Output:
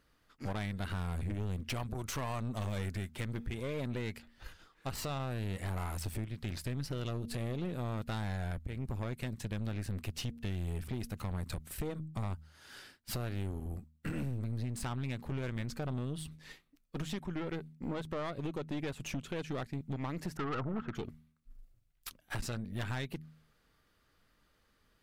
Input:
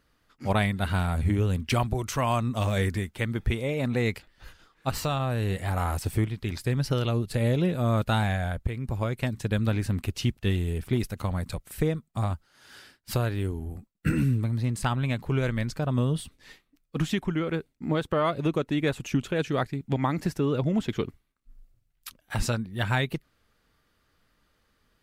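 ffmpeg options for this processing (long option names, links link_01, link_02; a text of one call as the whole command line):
ffmpeg -i in.wav -filter_complex "[0:a]bandreject=frequency=78.1:width_type=h:width=4,bandreject=frequency=156.2:width_type=h:width=4,bandreject=frequency=234.3:width_type=h:width=4,acompressor=threshold=-30dB:ratio=6,asettb=1/sr,asplit=3[link_01][link_02][link_03];[link_01]atrim=end=20.374[link_04];[link_02]atrim=start=20.37:end=20.95,asetpts=PTS-STARTPTS,afade=type=in:duration=0.004:curve=qsin,afade=type=out:start_time=0.576:duration=0.004:curve=qsin,lowpass=frequency=1300:width_type=q:width=11[link_05];[link_03]atrim=start=20.946[link_06];[link_04][link_05]acrossfade=duration=0.004:curve1=hsin:curve2=qsin[link_07];[link_07][link_06]acrossfade=duration=0.004:curve1=qsin:curve2=hsin,aeval=exprs='(tanh(39.8*val(0)+0.55)-tanh(0.55))/39.8':channel_layout=same" out.wav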